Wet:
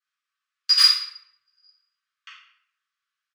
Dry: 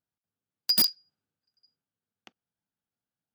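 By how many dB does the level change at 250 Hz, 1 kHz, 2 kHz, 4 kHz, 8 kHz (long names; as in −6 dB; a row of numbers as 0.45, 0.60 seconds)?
below −40 dB, +10.5 dB, +15.0 dB, +9.5 dB, +2.0 dB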